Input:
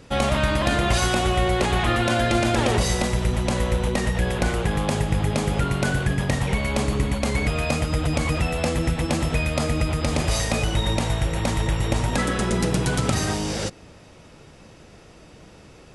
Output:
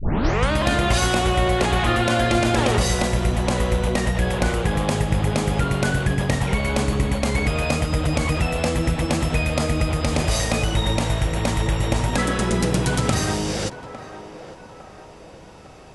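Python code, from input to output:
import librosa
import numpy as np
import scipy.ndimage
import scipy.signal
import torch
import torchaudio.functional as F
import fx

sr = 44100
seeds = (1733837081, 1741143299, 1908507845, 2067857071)

y = fx.tape_start_head(x, sr, length_s=0.52)
y = fx.echo_banded(y, sr, ms=855, feedback_pct=58, hz=750.0, wet_db=-11)
y = F.gain(torch.from_numpy(y), 1.5).numpy()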